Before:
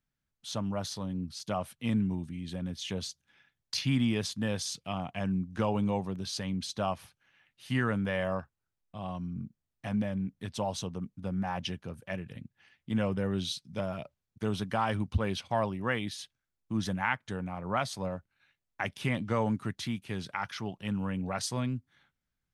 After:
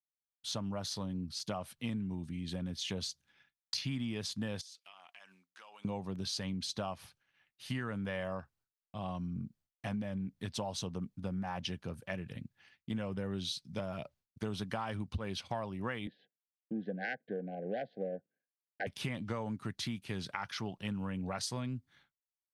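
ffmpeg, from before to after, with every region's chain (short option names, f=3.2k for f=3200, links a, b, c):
-filter_complex "[0:a]asettb=1/sr,asplit=3[a][b][c];[a]atrim=end=4.614[d];[b]atrim=start=4.61:end=5.85,asetpts=PTS-STARTPTS,afade=t=in:d=0.004:c=qsin,afade=t=out:st=1.236:d=0.004:c=qsin,highpass=1.4k,acompressor=threshold=-52dB:ratio=6:attack=3.2:release=140:knee=1:detection=peak[e];[c]atrim=start=5.846[f];[d][e]acrossfade=d=0.004:c1=hsin:c2=qsin[g];[g][f]acrossfade=d=0.004:c1=qsin:c2=hsin,asettb=1/sr,asplit=3[h][i][j];[h]atrim=end=16.074[k];[i]atrim=start=16.07:end=18.87,asetpts=PTS-STARTPTS,afade=t=in:d=0.004:c=qsin,afade=t=out:st=2.796:d=0.004:c=qsin,adynamicsmooth=sensitivity=1:basefreq=940,asuperstop=centerf=1100:order=20:qfactor=1.5,highpass=f=190:w=0.5412,highpass=f=190:w=1.3066,equalizer=f=480:t=q:w=4:g=10,equalizer=f=1.3k:t=q:w=4:g=9,equalizer=f=2.4k:t=q:w=4:g=-4,lowpass=f=3.7k:w=0.5412,lowpass=f=3.7k:w=1.3066[l];[j]atrim=start=18.866[m];[k][l]acrossfade=d=0.004:c1=hsin:c2=qsin[n];[n][m]acrossfade=d=0.004:c1=qsin:c2=hsin,agate=range=-33dB:threshold=-59dB:ratio=3:detection=peak,equalizer=f=4.5k:w=2.3:g=3.5,acompressor=threshold=-34dB:ratio=6"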